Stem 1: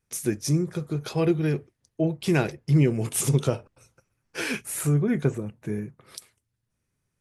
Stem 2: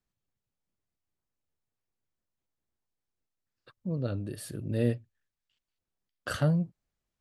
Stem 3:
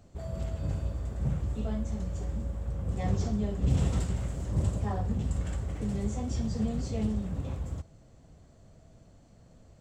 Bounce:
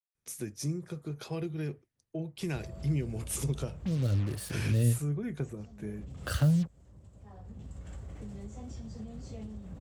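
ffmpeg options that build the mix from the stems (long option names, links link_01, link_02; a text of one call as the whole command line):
ffmpeg -i stem1.wav -i stem2.wav -i stem3.wav -filter_complex "[0:a]adelay=150,volume=-9dB[link_01];[1:a]equalizer=frequency=62:width=1.1:gain=15,acrusher=bits=6:mix=0:aa=0.5,volume=1dB,asplit=2[link_02][link_03];[2:a]acompressor=threshold=-36dB:ratio=6,adelay=2400,volume=-3.5dB[link_04];[link_03]apad=whole_len=538094[link_05];[link_04][link_05]sidechaincompress=threshold=-37dB:ratio=12:attack=16:release=1010[link_06];[link_01][link_02][link_06]amix=inputs=3:normalize=0,acrossover=split=180|3000[link_07][link_08][link_09];[link_08]acompressor=threshold=-36dB:ratio=4[link_10];[link_07][link_10][link_09]amix=inputs=3:normalize=0" out.wav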